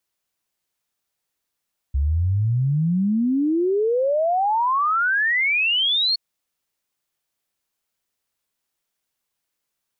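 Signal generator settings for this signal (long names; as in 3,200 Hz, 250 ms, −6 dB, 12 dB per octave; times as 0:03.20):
exponential sine sweep 66 Hz → 4,400 Hz 4.22 s −17 dBFS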